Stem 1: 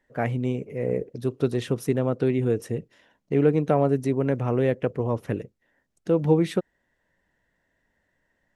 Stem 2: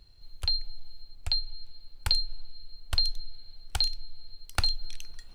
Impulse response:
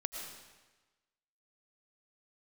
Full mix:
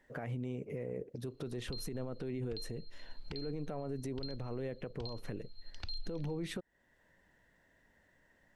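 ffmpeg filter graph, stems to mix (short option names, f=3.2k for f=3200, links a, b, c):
-filter_complex "[0:a]alimiter=limit=-18.5dB:level=0:latency=1:release=39,acompressor=threshold=-33dB:ratio=3,volume=3dB,asplit=2[a][b];[1:a]lowpass=f=4.8k:w=0.5412,lowpass=f=4.8k:w=1.3066,acrossover=split=490|3000[c][d][e];[d]acompressor=threshold=-44dB:ratio=3[f];[c][f][e]amix=inputs=3:normalize=0,adelay=1250,volume=1.5dB[g];[b]apad=whole_len=291040[h];[g][h]sidechaincompress=threshold=-38dB:ratio=4:attack=48:release=739[i];[a][i]amix=inputs=2:normalize=0,alimiter=level_in=6.5dB:limit=-24dB:level=0:latency=1:release=433,volume=-6.5dB"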